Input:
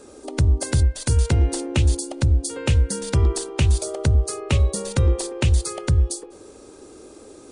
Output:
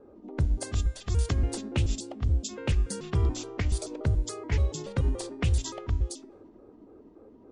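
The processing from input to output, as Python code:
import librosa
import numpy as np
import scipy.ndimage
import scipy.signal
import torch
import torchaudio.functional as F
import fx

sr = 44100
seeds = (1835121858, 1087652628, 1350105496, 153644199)

y = fx.pitch_trill(x, sr, semitones=-4.5, every_ms=143)
y = fx.comb_fb(y, sr, f0_hz=110.0, decay_s=0.97, harmonics='all', damping=0.0, mix_pct=40)
y = fx.env_lowpass(y, sr, base_hz=890.0, full_db=-19.0)
y = y * librosa.db_to_amplitude(-3.0)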